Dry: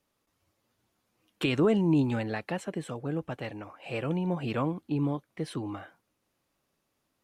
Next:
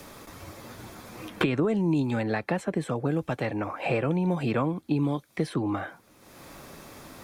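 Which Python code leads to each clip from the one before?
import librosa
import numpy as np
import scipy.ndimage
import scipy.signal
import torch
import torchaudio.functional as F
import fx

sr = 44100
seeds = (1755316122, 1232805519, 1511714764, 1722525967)

y = fx.notch(x, sr, hz=2900.0, q=10.0)
y = fx.band_squash(y, sr, depth_pct=100)
y = y * 10.0 ** (3.0 / 20.0)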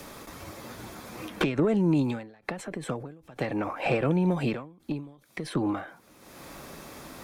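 y = fx.peak_eq(x, sr, hz=100.0, db=-5.5, octaves=0.39)
y = fx.tube_stage(y, sr, drive_db=17.0, bias=0.35)
y = fx.end_taper(y, sr, db_per_s=110.0)
y = y * 10.0 ** (3.0 / 20.0)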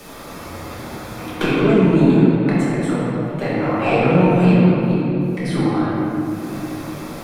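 y = fx.room_shoebox(x, sr, seeds[0], volume_m3=190.0, walls='hard', distance_m=1.3)
y = y * 10.0 ** (1.5 / 20.0)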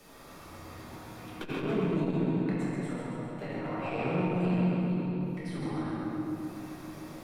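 y = fx.comb_fb(x, sr, f0_hz=930.0, decay_s=0.32, harmonics='all', damping=0.0, mix_pct=70)
y = fx.echo_feedback(y, sr, ms=134, feedback_pct=60, wet_db=-5.5)
y = fx.transformer_sat(y, sr, knee_hz=230.0)
y = y * 10.0 ** (-6.0 / 20.0)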